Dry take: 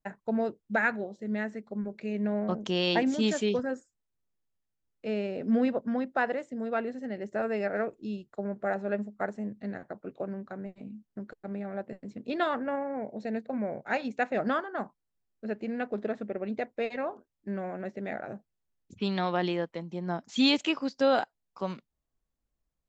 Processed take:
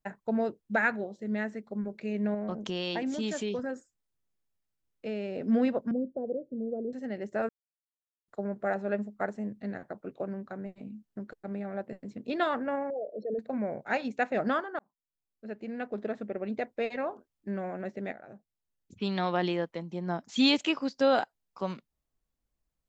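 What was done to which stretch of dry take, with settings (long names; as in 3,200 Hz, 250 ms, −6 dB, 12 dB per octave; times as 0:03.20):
0:02.34–0:05.36: downward compressor 2.5 to 1, threshold −31 dBFS
0:05.91–0:06.93: Chebyshev low-pass filter 540 Hz, order 4
0:07.49–0:08.28: silence
0:12.90–0:13.39: spectral envelope exaggerated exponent 3
0:14.79–0:16.92: fade in equal-power
0:18.12–0:19.29: fade in, from −13.5 dB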